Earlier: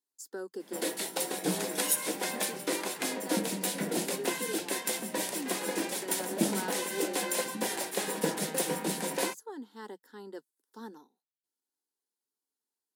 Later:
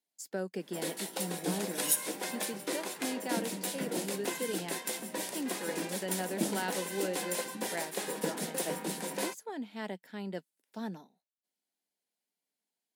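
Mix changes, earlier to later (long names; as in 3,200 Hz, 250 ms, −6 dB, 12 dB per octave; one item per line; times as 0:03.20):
speech: remove phaser with its sweep stopped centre 640 Hz, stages 6
first sound −4.0 dB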